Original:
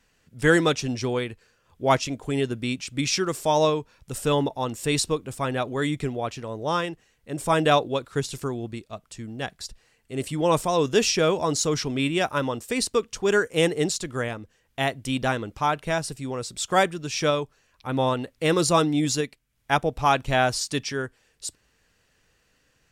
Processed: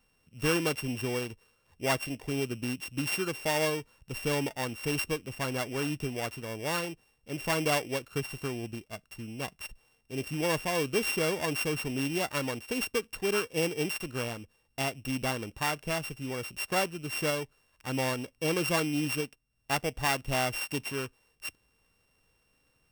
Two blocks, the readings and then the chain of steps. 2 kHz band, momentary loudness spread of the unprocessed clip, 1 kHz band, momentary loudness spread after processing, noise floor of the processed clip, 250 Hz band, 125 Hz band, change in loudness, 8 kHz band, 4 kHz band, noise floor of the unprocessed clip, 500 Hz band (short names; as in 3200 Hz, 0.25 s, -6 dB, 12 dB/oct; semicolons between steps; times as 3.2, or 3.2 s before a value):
-4.5 dB, 13 LU, -10.0 dB, 11 LU, -72 dBFS, -7.0 dB, -6.5 dB, -7.0 dB, -7.0 dB, -6.0 dB, -67 dBFS, -8.5 dB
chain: sample sorter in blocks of 16 samples; compressor 1.5:1, threshold -26 dBFS, peak gain reduction 5 dB; gain -4.5 dB